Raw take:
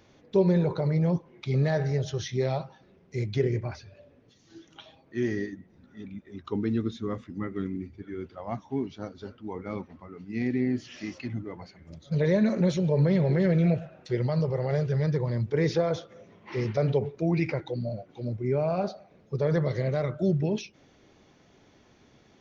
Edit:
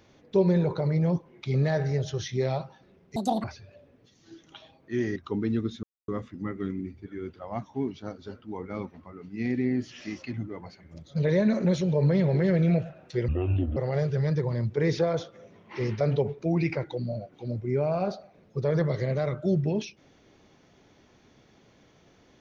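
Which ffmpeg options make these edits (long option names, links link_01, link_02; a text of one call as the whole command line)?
ffmpeg -i in.wav -filter_complex "[0:a]asplit=7[link_01][link_02][link_03][link_04][link_05][link_06][link_07];[link_01]atrim=end=3.164[link_08];[link_02]atrim=start=3.16:end=3.68,asetpts=PTS-STARTPTS,asetrate=81585,aresample=44100[link_09];[link_03]atrim=start=3.676:end=5.402[link_10];[link_04]atrim=start=6.368:end=7.04,asetpts=PTS-STARTPTS,afade=type=out:start_time=0.668:duration=0.004:curve=hsin,apad=pad_dur=0.25[link_11];[link_05]atrim=start=7.04:end=14.244,asetpts=PTS-STARTPTS,afade=type=in:duration=0.004:curve=hsin[link_12];[link_06]atrim=start=14.24:end=14.53,asetpts=PTS-STARTPTS,asetrate=26460,aresample=44100[link_13];[link_07]atrim=start=14.526[link_14];[link_08][link_09]acrossfade=duration=0.004:curve1=hsin:curve2=hsin[link_15];[link_15][link_10]acrossfade=duration=0.004:curve1=hsin:curve2=hsin[link_16];[link_11][link_12]concat=n=2:v=0:a=1[link_17];[link_16][link_17]acrossfade=duration=0.004:curve1=hsin:curve2=hsin[link_18];[link_18][link_13]acrossfade=duration=0.004:curve1=hsin:curve2=hsin[link_19];[link_19][link_14]acrossfade=duration=0.004:curve1=hsin:curve2=hsin" out.wav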